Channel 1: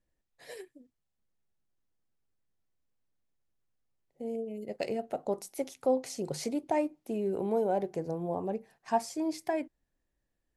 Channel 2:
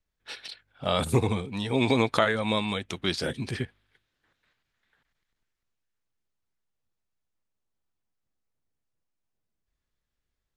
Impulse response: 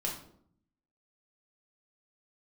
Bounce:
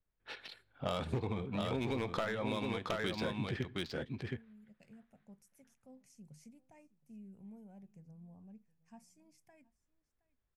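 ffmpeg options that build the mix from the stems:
-filter_complex "[0:a]firequalizer=gain_entry='entry(210,0);entry(320,-22);entry(2500,-9);entry(3900,-21);entry(5600,-8)':delay=0.05:min_phase=1,volume=-14.5dB,asplit=2[link_01][link_02];[link_02]volume=-22.5dB[link_03];[1:a]adynamicsmooth=sensitivity=2:basefreq=2600,volume=17dB,asoftclip=hard,volume=-17dB,volume=-3.5dB,asplit=3[link_04][link_05][link_06];[link_05]volume=-19.5dB[link_07];[link_06]volume=-5dB[link_08];[2:a]atrim=start_sample=2205[link_09];[link_07][link_09]afir=irnorm=-1:irlink=0[link_10];[link_03][link_08]amix=inputs=2:normalize=0,aecho=0:1:718:1[link_11];[link_01][link_04][link_10][link_11]amix=inputs=4:normalize=0,acompressor=threshold=-32dB:ratio=12"

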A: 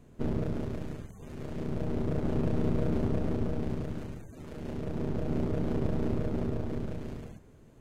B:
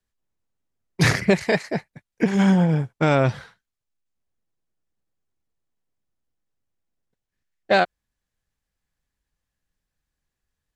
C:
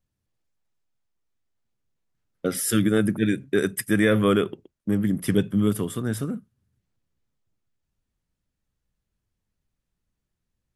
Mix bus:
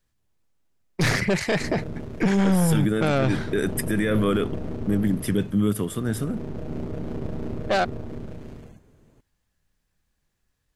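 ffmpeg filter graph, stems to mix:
ffmpeg -i stem1.wav -i stem2.wav -i stem3.wav -filter_complex "[0:a]adelay=1400,volume=-1dB[link_01];[1:a]aeval=exprs='(tanh(6.31*val(0)+0.55)-tanh(0.55))/6.31':channel_layout=same,acontrast=31,volume=2.5dB[link_02];[2:a]volume=0.5dB[link_03];[link_01][link_02][link_03]amix=inputs=3:normalize=0,alimiter=limit=-13dB:level=0:latency=1:release=19" out.wav

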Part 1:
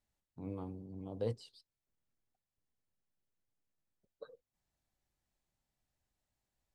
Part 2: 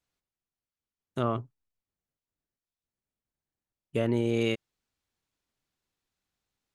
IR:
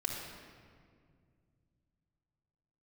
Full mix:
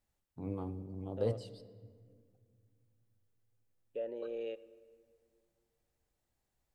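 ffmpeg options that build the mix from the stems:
-filter_complex "[0:a]equalizer=frequency=4200:width_type=o:width=1.9:gain=-3,volume=2dB,asplit=2[link_01][link_02];[link_02]volume=-14.5dB[link_03];[1:a]equalizer=frequency=125:width_type=o:width=1:gain=-8,equalizer=frequency=1000:width_type=o:width=1:gain=10,equalizer=frequency=2000:width_type=o:width=1:gain=-12,equalizer=frequency=8000:width_type=o:width=1:gain=-5,alimiter=limit=-18dB:level=0:latency=1,asplit=3[link_04][link_05][link_06];[link_04]bandpass=frequency=530:width_type=q:width=8,volume=0dB[link_07];[link_05]bandpass=frequency=1840:width_type=q:width=8,volume=-6dB[link_08];[link_06]bandpass=frequency=2480:width_type=q:width=8,volume=-9dB[link_09];[link_07][link_08][link_09]amix=inputs=3:normalize=0,volume=-3dB,asplit=2[link_10][link_11];[link_11]volume=-17dB[link_12];[2:a]atrim=start_sample=2205[link_13];[link_03][link_12]amix=inputs=2:normalize=0[link_14];[link_14][link_13]afir=irnorm=-1:irlink=0[link_15];[link_01][link_10][link_15]amix=inputs=3:normalize=0"

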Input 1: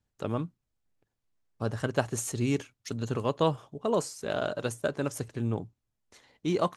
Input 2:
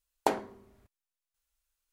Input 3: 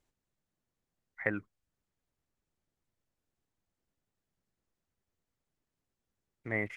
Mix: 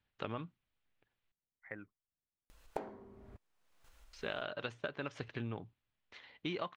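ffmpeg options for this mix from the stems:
ffmpeg -i stem1.wav -i stem2.wav -i stem3.wav -filter_complex "[0:a]lowpass=frequency=3300:width=0.5412,lowpass=frequency=3300:width=1.3066,tiltshelf=frequency=1200:gain=-8,volume=2dB,asplit=3[link_01][link_02][link_03];[link_01]atrim=end=1.32,asetpts=PTS-STARTPTS,afade=type=out:start_time=1.316:duration=0.004:curve=hsin[link_04];[link_02]atrim=start=1.32:end=4.13,asetpts=PTS-STARTPTS,volume=0[link_05];[link_03]atrim=start=4.13,asetpts=PTS-STARTPTS,afade=type=in:duration=0.004:curve=hsin[link_06];[link_04][link_05][link_06]concat=n=3:v=0:a=1[link_07];[1:a]lowpass=frequency=1300:poles=1,acompressor=mode=upward:threshold=-36dB:ratio=2.5,adelay=2500,volume=-2.5dB[link_08];[2:a]adelay=450,volume=-14.5dB[link_09];[link_07][link_08][link_09]amix=inputs=3:normalize=0,acompressor=threshold=-36dB:ratio=8" out.wav

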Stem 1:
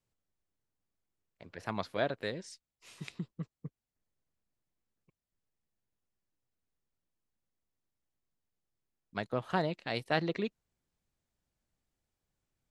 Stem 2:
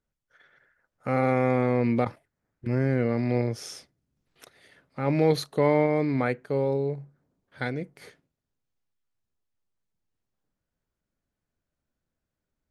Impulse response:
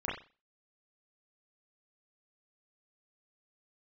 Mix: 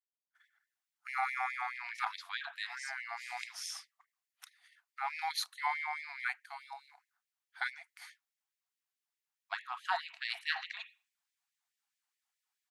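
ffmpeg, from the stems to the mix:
-filter_complex "[0:a]adelay=350,volume=0dB,asplit=2[link_01][link_02];[link_02]volume=-11.5dB[link_03];[1:a]agate=range=-33dB:threshold=-51dB:ratio=3:detection=peak,volume=-1.5dB[link_04];[2:a]atrim=start_sample=2205[link_05];[link_03][link_05]afir=irnorm=-1:irlink=0[link_06];[link_01][link_04][link_06]amix=inputs=3:normalize=0,afftfilt=real='re*gte(b*sr/1024,650*pow(1800/650,0.5+0.5*sin(2*PI*4.7*pts/sr)))':imag='im*gte(b*sr/1024,650*pow(1800/650,0.5+0.5*sin(2*PI*4.7*pts/sr)))':win_size=1024:overlap=0.75"

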